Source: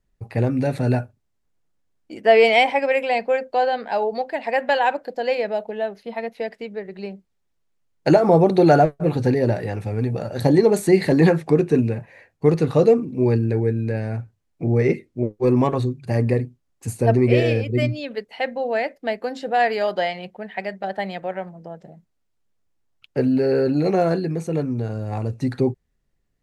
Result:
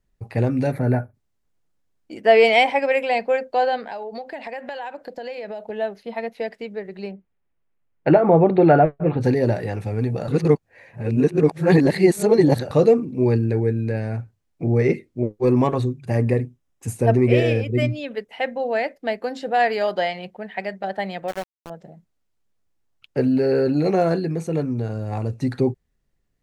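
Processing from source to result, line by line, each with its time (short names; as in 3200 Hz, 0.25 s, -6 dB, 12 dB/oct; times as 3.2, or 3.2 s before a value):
0.71–1.14 spectral gain 2400–9700 Hz -14 dB
3.79–5.7 compressor 10:1, threshold -28 dBFS
7.11–9.21 LPF 2800 Hz 24 dB/oct
10.28–12.71 reverse
15.82–18.6 notch 4400 Hz, Q 6.3
21.28–21.7 sample gate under -30 dBFS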